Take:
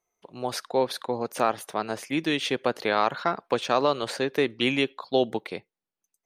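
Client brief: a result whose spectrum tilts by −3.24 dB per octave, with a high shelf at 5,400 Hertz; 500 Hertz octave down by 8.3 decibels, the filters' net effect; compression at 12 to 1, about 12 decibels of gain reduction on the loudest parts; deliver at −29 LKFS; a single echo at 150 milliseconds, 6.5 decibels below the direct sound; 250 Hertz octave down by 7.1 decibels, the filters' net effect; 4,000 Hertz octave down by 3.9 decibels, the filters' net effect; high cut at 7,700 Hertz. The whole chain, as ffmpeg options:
ffmpeg -i in.wav -af "lowpass=7700,equalizer=frequency=250:width_type=o:gain=-5.5,equalizer=frequency=500:width_type=o:gain=-9,equalizer=frequency=4000:width_type=o:gain=-6.5,highshelf=frequency=5400:gain=5,acompressor=threshold=-33dB:ratio=12,aecho=1:1:150:0.473,volume=9.5dB" out.wav

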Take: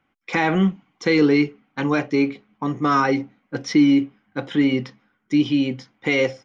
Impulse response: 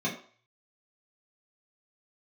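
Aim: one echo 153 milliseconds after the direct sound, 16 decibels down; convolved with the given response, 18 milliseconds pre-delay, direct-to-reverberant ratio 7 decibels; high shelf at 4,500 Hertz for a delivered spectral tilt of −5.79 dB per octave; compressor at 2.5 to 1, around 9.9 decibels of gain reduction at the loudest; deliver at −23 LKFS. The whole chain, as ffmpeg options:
-filter_complex "[0:a]highshelf=frequency=4500:gain=-9,acompressor=threshold=-28dB:ratio=2.5,aecho=1:1:153:0.158,asplit=2[link_01][link_02];[1:a]atrim=start_sample=2205,adelay=18[link_03];[link_02][link_03]afir=irnorm=-1:irlink=0,volume=-15dB[link_04];[link_01][link_04]amix=inputs=2:normalize=0,volume=5dB"

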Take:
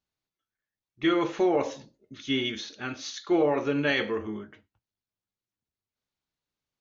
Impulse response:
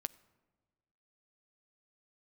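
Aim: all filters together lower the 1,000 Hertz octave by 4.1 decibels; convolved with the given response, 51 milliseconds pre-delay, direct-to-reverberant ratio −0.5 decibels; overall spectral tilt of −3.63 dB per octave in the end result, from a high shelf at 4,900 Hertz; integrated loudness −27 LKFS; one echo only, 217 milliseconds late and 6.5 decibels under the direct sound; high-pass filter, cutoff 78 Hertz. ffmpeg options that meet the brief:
-filter_complex "[0:a]highpass=78,equalizer=frequency=1000:width_type=o:gain=-5.5,highshelf=frequency=4900:gain=-4.5,aecho=1:1:217:0.473,asplit=2[link_01][link_02];[1:a]atrim=start_sample=2205,adelay=51[link_03];[link_02][link_03]afir=irnorm=-1:irlink=0,volume=2.5dB[link_04];[link_01][link_04]amix=inputs=2:normalize=0,volume=-2dB"

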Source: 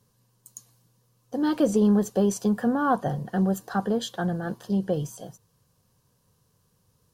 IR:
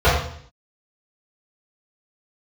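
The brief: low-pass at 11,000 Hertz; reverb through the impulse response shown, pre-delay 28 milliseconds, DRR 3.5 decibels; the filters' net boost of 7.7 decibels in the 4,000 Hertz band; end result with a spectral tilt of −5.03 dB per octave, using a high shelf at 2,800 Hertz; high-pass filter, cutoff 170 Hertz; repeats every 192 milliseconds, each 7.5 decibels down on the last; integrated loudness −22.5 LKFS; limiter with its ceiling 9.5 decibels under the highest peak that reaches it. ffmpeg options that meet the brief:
-filter_complex "[0:a]highpass=170,lowpass=11000,highshelf=frequency=2800:gain=7.5,equalizer=frequency=4000:width_type=o:gain=4,alimiter=limit=-20dB:level=0:latency=1,aecho=1:1:192|384|576|768|960:0.422|0.177|0.0744|0.0312|0.0131,asplit=2[link_01][link_02];[1:a]atrim=start_sample=2205,adelay=28[link_03];[link_02][link_03]afir=irnorm=-1:irlink=0,volume=-28.5dB[link_04];[link_01][link_04]amix=inputs=2:normalize=0,volume=4.5dB"

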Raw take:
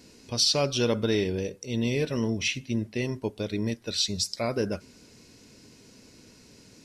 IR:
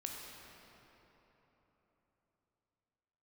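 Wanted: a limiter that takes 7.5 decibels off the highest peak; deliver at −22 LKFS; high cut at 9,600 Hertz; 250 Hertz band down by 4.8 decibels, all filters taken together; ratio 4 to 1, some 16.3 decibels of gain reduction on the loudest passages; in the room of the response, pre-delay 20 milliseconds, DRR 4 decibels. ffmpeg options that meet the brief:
-filter_complex "[0:a]lowpass=9600,equalizer=frequency=250:width_type=o:gain=-6,acompressor=threshold=-42dB:ratio=4,alimiter=level_in=10.5dB:limit=-24dB:level=0:latency=1,volume=-10.5dB,asplit=2[link_01][link_02];[1:a]atrim=start_sample=2205,adelay=20[link_03];[link_02][link_03]afir=irnorm=-1:irlink=0,volume=-3.5dB[link_04];[link_01][link_04]amix=inputs=2:normalize=0,volume=22.5dB"

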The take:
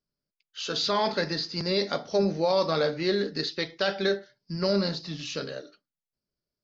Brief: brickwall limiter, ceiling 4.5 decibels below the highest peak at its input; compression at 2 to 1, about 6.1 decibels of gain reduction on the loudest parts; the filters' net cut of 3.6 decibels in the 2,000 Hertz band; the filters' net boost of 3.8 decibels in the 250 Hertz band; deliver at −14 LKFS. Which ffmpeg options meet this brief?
ffmpeg -i in.wav -af "equalizer=frequency=250:width_type=o:gain=6,equalizer=frequency=2000:width_type=o:gain=-5,acompressor=threshold=-30dB:ratio=2,volume=19dB,alimiter=limit=-3.5dB:level=0:latency=1" out.wav

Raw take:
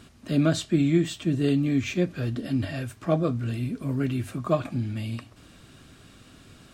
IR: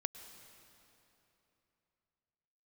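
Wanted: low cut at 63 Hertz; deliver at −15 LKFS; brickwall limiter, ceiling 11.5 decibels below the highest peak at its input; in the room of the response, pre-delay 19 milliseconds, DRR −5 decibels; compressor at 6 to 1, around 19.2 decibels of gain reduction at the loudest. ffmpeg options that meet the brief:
-filter_complex "[0:a]highpass=63,acompressor=threshold=-39dB:ratio=6,alimiter=level_in=15.5dB:limit=-24dB:level=0:latency=1,volume=-15.5dB,asplit=2[link_01][link_02];[1:a]atrim=start_sample=2205,adelay=19[link_03];[link_02][link_03]afir=irnorm=-1:irlink=0,volume=6dB[link_04];[link_01][link_04]amix=inputs=2:normalize=0,volume=27dB"

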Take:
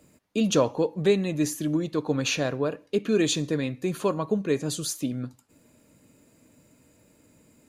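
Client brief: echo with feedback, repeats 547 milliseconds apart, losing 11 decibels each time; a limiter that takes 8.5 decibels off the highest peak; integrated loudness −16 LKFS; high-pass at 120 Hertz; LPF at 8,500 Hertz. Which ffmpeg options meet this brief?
ffmpeg -i in.wav -af "highpass=120,lowpass=8500,alimiter=limit=-17.5dB:level=0:latency=1,aecho=1:1:547|1094|1641:0.282|0.0789|0.0221,volume=12.5dB" out.wav

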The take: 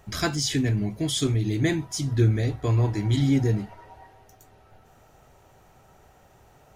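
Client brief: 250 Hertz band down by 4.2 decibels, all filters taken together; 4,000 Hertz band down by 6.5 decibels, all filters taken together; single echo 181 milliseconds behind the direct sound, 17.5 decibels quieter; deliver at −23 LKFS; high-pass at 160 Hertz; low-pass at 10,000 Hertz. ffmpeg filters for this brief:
ffmpeg -i in.wav -af "highpass=160,lowpass=10000,equalizer=frequency=250:width_type=o:gain=-4.5,equalizer=frequency=4000:width_type=o:gain=-8.5,aecho=1:1:181:0.133,volume=6.5dB" out.wav

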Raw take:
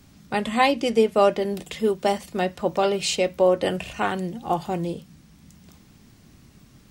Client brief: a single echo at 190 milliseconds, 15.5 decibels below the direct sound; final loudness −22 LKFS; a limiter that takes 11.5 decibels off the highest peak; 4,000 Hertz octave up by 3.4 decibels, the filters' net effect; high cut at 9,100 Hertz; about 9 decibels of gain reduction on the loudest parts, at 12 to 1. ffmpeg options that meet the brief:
ffmpeg -i in.wav -af "lowpass=9100,equalizer=frequency=4000:width_type=o:gain=4.5,acompressor=threshold=-21dB:ratio=12,alimiter=limit=-24dB:level=0:latency=1,aecho=1:1:190:0.168,volume=11.5dB" out.wav

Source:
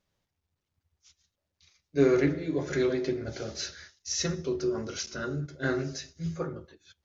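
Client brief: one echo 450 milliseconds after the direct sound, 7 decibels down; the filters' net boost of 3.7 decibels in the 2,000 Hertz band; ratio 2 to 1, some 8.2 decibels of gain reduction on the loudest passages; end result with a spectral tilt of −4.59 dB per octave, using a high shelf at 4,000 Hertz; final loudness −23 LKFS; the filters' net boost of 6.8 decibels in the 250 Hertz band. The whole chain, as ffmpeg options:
ffmpeg -i in.wav -af "equalizer=frequency=250:width_type=o:gain=9,equalizer=frequency=2000:width_type=o:gain=4,highshelf=frequency=4000:gain=4,acompressor=threshold=-27dB:ratio=2,aecho=1:1:450:0.447,volume=6.5dB" out.wav

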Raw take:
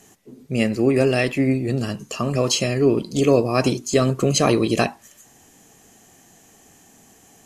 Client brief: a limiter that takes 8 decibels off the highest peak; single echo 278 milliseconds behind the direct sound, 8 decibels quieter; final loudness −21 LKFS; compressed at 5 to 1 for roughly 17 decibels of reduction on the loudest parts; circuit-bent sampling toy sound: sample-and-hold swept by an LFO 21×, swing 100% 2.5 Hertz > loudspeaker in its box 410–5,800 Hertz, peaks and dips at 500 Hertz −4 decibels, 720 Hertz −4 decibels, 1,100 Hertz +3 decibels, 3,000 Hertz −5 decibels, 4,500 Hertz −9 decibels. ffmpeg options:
ffmpeg -i in.wav -af "acompressor=threshold=-32dB:ratio=5,alimiter=level_in=1.5dB:limit=-24dB:level=0:latency=1,volume=-1.5dB,aecho=1:1:278:0.398,acrusher=samples=21:mix=1:aa=0.000001:lfo=1:lforange=21:lforate=2.5,highpass=410,equalizer=frequency=500:width_type=q:width=4:gain=-4,equalizer=frequency=720:width_type=q:width=4:gain=-4,equalizer=frequency=1100:width_type=q:width=4:gain=3,equalizer=frequency=3000:width_type=q:width=4:gain=-5,equalizer=frequency=4500:width_type=q:width=4:gain=-9,lowpass=frequency=5800:width=0.5412,lowpass=frequency=5800:width=1.3066,volume=20dB" out.wav

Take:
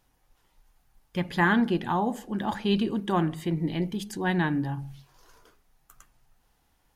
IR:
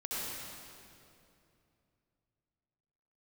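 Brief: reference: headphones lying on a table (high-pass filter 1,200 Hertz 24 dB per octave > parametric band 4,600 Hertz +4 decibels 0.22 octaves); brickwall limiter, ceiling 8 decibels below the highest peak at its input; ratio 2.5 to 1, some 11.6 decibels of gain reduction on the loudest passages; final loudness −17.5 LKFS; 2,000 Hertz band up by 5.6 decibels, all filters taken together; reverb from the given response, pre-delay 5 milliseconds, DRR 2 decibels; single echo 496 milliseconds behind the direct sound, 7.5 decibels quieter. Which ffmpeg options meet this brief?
-filter_complex "[0:a]equalizer=frequency=2000:width_type=o:gain=7.5,acompressor=threshold=-33dB:ratio=2.5,alimiter=level_in=3dB:limit=-24dB:level=0:latency=1,volume=-3dB,aecho=1:1:496:0.422,asplit=2[link_01][link_02];[1:a]atrim=start_sample=2205,adelay=5[link_03];[link_02][link_03]afir=irnorm=-1:irlink=0,volume=-6dB[link_04];[link_01][link_04]amix=inputs=2:normalize=0,highpass=frequency=1200:width=0.5412,highpass=frequency=1200:width=1.3066,equalizer=frequency=4600:width_type=o:width=0.22:gain=4,volume=23dB"

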